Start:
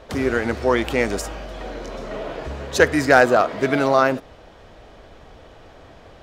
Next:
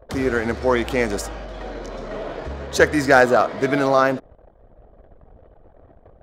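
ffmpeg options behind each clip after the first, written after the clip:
-af "anlmdn=0.251,equalizer=f=2.7k:w=3.6:g=-4"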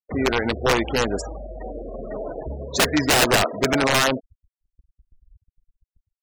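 -af "aeval=exprs='(mod(3.35*val(0)+1,2)-1)/3.35':c=same,afftfilt=real='re*gte(hypot(re,im),0.0562)':imag='im*gte(hypot(re,im),0.0562)':win_size=1024:overlap=0.75,agate=range=-11dB:threshold=-56dB:ratio=16:detection=peak"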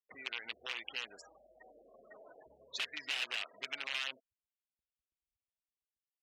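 -af "acompressor=threshold=-24dB:ratio=6,bandpass=f=2.8k:t=q:w=2.9:csg=0,volume=-3dB"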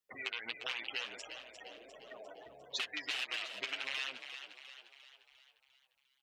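-filter_complex "[0:a]acompressor=threshold=-40dB:ratio=6,flanger=delay=6.4:depth=4:regen=15:speed=1.5:shape=sinusoidal,asplit=7[a][b][c][d][e][f][g];[b]adelay=351,afreqshift=49,volume=-9.5dB[h];[c]adelay=702,afreqshift=98,volume=-15.2dB[i];[d]adelay=1053,afreqshift=147,volume=-20.9dB[j];[e]adelay=1404,afreqshift=196,volume=-26.5dB[k];[f]adelay=1755,afreqshift=245,volume=-32.2dB[l];[g]adelay=2106,afreqshift=294,volume=-37.9dB[m];[a][h][i][j][k][l][m]amix=inputs=7:normalize=0,volume=9dB"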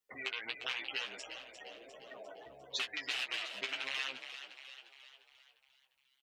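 -filter_complex "[0:a]asplit=2[a][b];[b]adelay=15,volume=-6.5dB[c];[a][c]amix=inputs=2:normalize=0"

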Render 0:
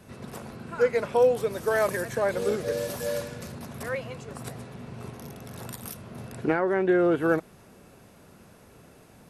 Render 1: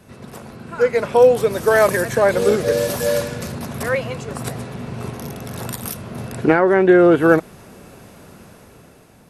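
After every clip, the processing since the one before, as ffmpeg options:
-af "dynaudnorm=f=220:g=9:m=8dB,volume=3dB"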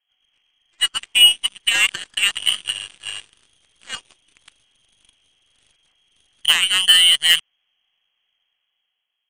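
-af "lowpass=f=2.9k:t=q:w=0.5098,lowpass=f=2.9k:t=q:w=0.6013,lowpass=f=2.9k:t=q:w=0.9,lowpass=f=2.9k:t=q:w=2.563,afreqshift=-3400,aeval=exprs='1*(cos(1*acos(clip(val(0)/1,-1,1)))-cos(1*PI/2))+0.0126*(cos(5*acos(clip(val(0)/1,-1,1)))-cos(5*PI/2))+0.158*(cos(7*acos(clip(val(0)/1,-1,1)))-cos(7*PI/2))+0.00708*(cos(8*acos(clip(val(0)/1,-1,1)))-cos(8*PI/2))':c=same,volume=-1.5dB"

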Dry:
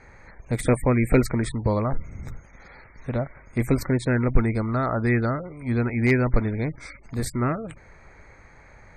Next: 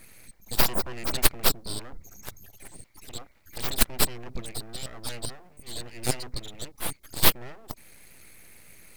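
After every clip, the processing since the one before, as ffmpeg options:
-af "aexciter=amount=7.1:drive=7.9:freq=2.4k,highshelf=f=3k:t=q:w=3:g=10,aeval=exprs='abs(val(0))':c=same,volume=-14.5dB"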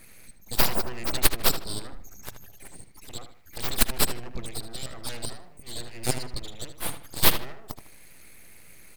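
-filter_complex "[0:a]asplit=2[a][b];[b]adelay=77,lowpass=f=4.5k:p=1,volume=-9dB,asplit=2[c][d];[d]adelay=77,lowpass=f=4.5k:p=1,volume=0.33,asplit=2[e][f];[f]adelay=77,lowpass=f=4.5k:p=1,volume=0.33,asplit=2[g][h];[h]adelay=77,lowpass=f=4.5k:p=1,volume=0.33[i];[a][c][e][g][i]amix=inputs=5:normalize=0"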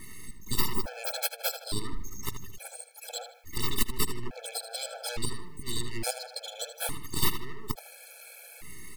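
-af "acompressor=threshold=-31dB:ratio=3,afftfilt=real='re*gt(sin(2*PI*0.58*pts/sr)*(1-2*mod(floor(b*sr/1024/440),2)),0)':imag='im*gt(sin(2*PI*0.58*pts/sr)*(1-2*mod(floor(b*sr/1024/440),2)),0)':win_size=1024:overlap=0.75,volume=8dB"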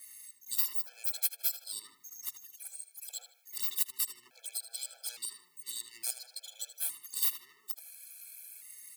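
-af "highpass=120,aderivative,volume=-2dB"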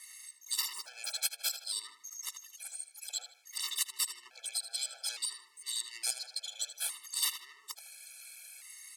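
-af "highpass=630,lowpass=7.7k,volume=7dB"

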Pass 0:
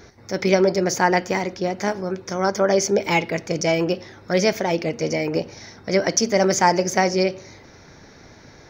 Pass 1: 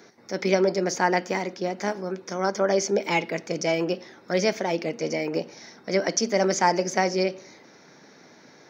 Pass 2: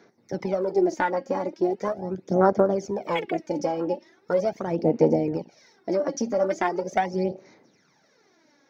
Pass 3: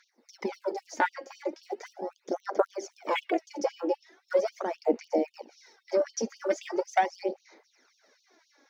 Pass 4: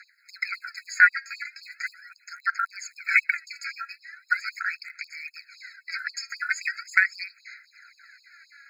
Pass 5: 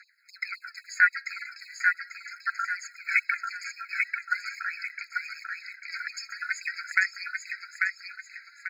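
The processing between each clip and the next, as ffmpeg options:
-filter_complex "[0:a]highpass=f=170:w=0.5412,highpass=f=170:w=1.3066,acrossover=split=8700[a][b];[b]acompressor=threshold=-54dB:ratio=4:attack=1:release=60[c];[a][c]amix=inputs=2:normalize=0,volume=-4dB"
-af "afwtdn=0.0501,acompressor=threshold=-26dB:ratio=6,aphaser=in_gain=1:out_gain=1:delay=3.7:decay=0.66:speed=0.4:type=sinusoidal,volume=3.5dB"
-af "afftfilt=real='re*gte(b*sr/1024,210*pow(2800/210,0.5+0.5*sin(2*PI*3.8*pts/sr)))':imag='im*gte(b*sr/1024,210*pow(2800/210,0.5+0.5*sin(2*PI*3.8*pts/sr)))':win_size=1024:overlap=0.75"
-filter_complex "[0:a]asplit=2[a][b];[b]alimiter=limit=-18dB:level=0:latency=1:release=253,volume=0.5dB[c];[a][c]amix=inputs=2:normalize=0,highpass=f=1.5k:t=q:w=2,afftfilt=real='re*eq(mod(floor(b*sr/1024/1300),2),1)':imag='im*eq(mod(floor(b*sr/1024/1300),2),1)':win_size=1024:overlap=0.75,volume=6dB"
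-af "aecho=1:1:842|1684|2526|3368|4210:0.668|0.241|0.0866|0.0312|0.0112,volume=-4dB"

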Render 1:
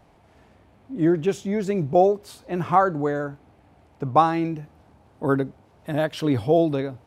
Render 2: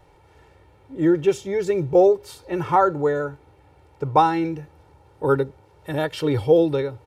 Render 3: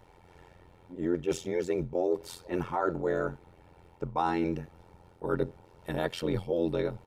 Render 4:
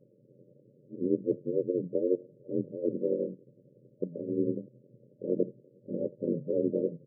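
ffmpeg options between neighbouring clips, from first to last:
-af "aecho=1:1:2.2:0.82"
-af "areverse,acompressor=threshold=-23dB:ratio=10,areverse,tremolo=f=87:d=0.919,volume=1dB"
-af "aeval=exprs='val(0)*sin(2*PI*49*n/s)':c=same,bandreject=f=50:t=h:w=6,bandreject=f=100:t=h:w=6,bandreject=f=150:t=h:w=6,afftfilt=real='re*between(b*sr/4096,110,600)':imag='im*between(b*sr/4096,110,600)':win_size=4096:overlap=0.75,volume=3.5dB"

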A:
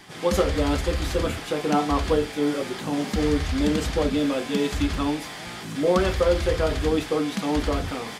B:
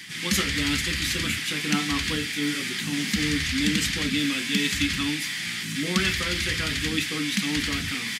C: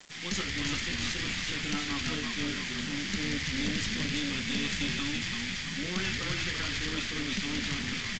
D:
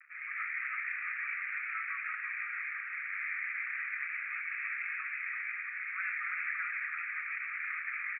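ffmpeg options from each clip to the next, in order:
-af "firequalizer=gain_entry='entry(220,0);entry(540,-23);entry(1900,8);entry(3600,6)':delay=0.05:min_phase=1,areverse,acompressor=mode=upward:threshold=-34dB:ratio=2.5,areverse,highpass=120,volume=2dB"
-filter_complex "[0:a]asplit=8[a][b][c][d][e][f][g][h];[b]adelay=336,afreqshift=-50,volume=-4dB[i];[c]adelay=672,afreqshift=-100,volume=-9.2dB[j];[d]adelay=1008,afreqshift=-150,volume=-14.4dB[k];[e]adelay=1344,afreqshift=-200,volume=-19.6dB[l];[f]adelay=1680,afreqshift=-250,volume=-24.8dB[m];[g]adelay=2016,afreqshift=-300,volume=-30dB[n];[h]adelay=2352,afreqshift=-350,volume=-35.2dB[o];[a][i][j][k][l][m][n][o]amix=inputs=8:normalize=0,aeval=exprs='(tanh(10*val(0)+0.55)-tanh(0.55))/10':c=same,aresample=16000,aeval=exprs='val(0)*gte(abs(val(0)),0.0119)':c=same,aresample=44100,volume=-5dB"
-af "asuperpass=centerf=1700:order=20:qfactor=1.3,volume=1.5dB"

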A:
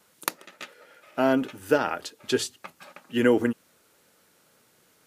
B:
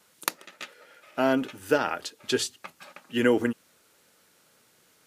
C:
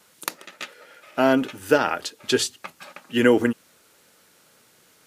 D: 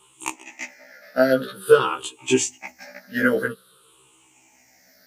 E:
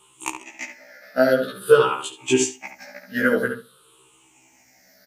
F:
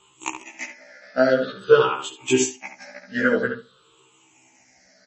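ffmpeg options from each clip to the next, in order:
-af "equalizer=f=4.5k:w=0.32:g=3.5,volume=-2dB"
-af "alimiter=level_in=6dB:limit=-1dB:release=50:level=0:latency=1,volume=-1dB"
-af "afftfilt=real='re*pow(10,21/40*sin(2*PI*(0.66*log(max(b,1)*sr/1024/100)/log(2)-(-0.5)*(pts-256)/sr)))':imag='im*pow(10,21/40*sin(2*PI*(0.66*log(max(b,1)*sr/1024/100)/log(2)-(-0.5)*(pts-256)/sr)))':win_size=1024:overlap=0.75,afftfilt=real='re*1.73*eq(mod(b,3),0)':imag='im*1.73*eq(mod(b,3),0)':win_size=2048:overlap=0.75,volume=-1dB"
-filter_complex "[0:a]asplit=2[a][b];[b]adelay=70,lowpass=f=2.4k:p=1,volume=-6dB,asplit=2[c][d];[d]adelay=70,lowpass=f=2.4k:p=1,volume=0.16,asplit=2[e][f];[f]adelay=70,lowpass=f=2.4k:p=1,volume=0.16[g];[a][c][e][g]amix=inputs=4:normalize=0"
-ar 32000 -c:a libmp3lame -b:a 32k

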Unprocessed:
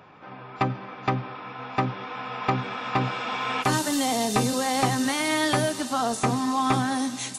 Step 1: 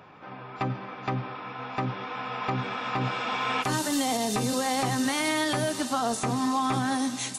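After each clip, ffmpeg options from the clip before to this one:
-af "alimiter=limit=-17.5dB:level=0:latency=1:release=105"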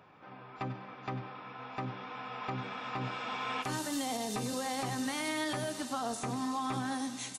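-af "aecho=1:1:97|194|291|388:0.178|0.0782|0.0344|0.0151,volume=-8.5dB"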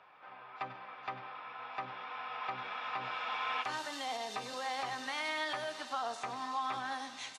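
-filter_complex "[0:a]acrossover=split=570 5000:gain=0.112 1 0.112[a][b][c];[a][b][c]amix=inputs=3:normalize=0,volume=1.5dB"

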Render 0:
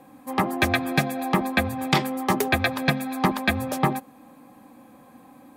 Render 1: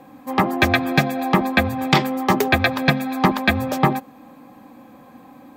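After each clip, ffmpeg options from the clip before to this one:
-af "equalizer=f=10k:t=o:w=0.54:g=-12,volume=5dB"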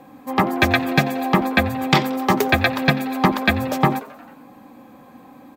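-filter_complex "[0:a]asplit=6[a][b][c][d][e][f];[b]adelay=89,afreqshift=140,volume=-21dB[g];[c]adelay=178,afreqshift=280,volume=-24.9dB[h];[d]adelay=267,afreqshift=420,volume=-28.8dB[i];[e]adelay=356,afreqshift=560,volume=-32.6dB[j];[f]adelay=445,afreqshift=700,volume=-36.5dB[k];[a][g][h][i][j][k]amix=inputs=6:normalize=0"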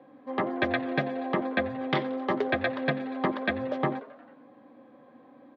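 -af "highpass=160,equalizer=f=190:t=q:w=4:g=-8,equalizer=f=560:t=q:w=4:g=5,equalizer=f=850:t=q:w=4:g=-7,equalizer=f=1.3k:t=q:w=4:g=-4,equalizer=f=2.5k:t=q:w=4:g=-9,lowpass=f=3.2k:w=0.5412,lowpass=f=3.2k:w=1.3066,volume=-7.5dB"

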